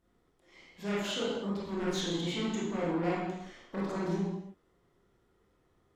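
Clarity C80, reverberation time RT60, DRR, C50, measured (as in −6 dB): 2.5 dB, non-exponential decay, −7.5 dB, −1.5 dB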